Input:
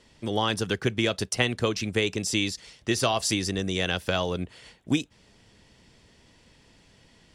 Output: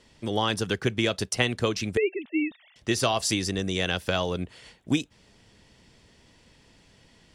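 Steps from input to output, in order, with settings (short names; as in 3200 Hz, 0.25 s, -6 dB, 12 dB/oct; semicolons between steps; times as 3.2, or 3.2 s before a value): 1.97–2.76 sine-wave speech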